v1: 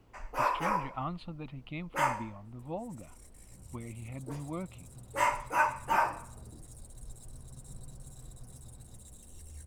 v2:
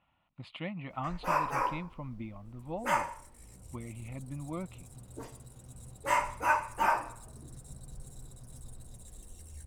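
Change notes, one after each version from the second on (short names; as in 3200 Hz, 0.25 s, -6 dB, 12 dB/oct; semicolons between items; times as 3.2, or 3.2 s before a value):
first sound: entry +0.90 s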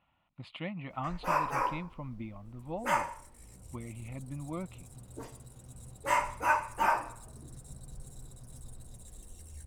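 none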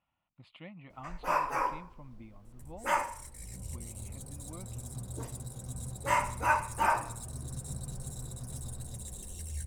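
speech -9.5 dB; second sound +9.5 dB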